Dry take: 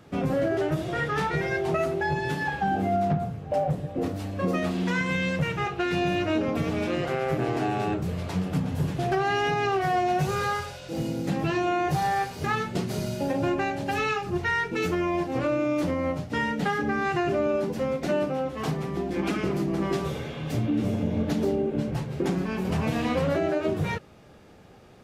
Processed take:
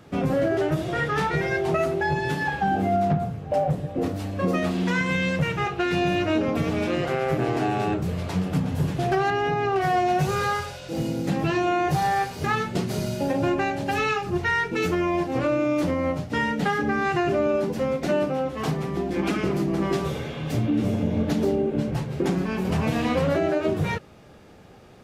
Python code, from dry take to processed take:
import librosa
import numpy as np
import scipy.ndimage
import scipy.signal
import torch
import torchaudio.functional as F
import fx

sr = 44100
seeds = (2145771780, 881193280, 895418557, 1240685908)

y = fx.high_shelf(x, sr, hz=2200.0, db=-10.5, at=(9.3, 9.76))
y = F.gain(torch.from_numpy(y), 2.5).numpy()